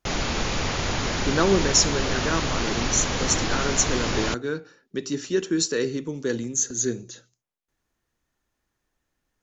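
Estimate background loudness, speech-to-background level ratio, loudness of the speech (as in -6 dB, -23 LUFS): -26.0 LUFS, 1.0 dB, -25.0 LUFS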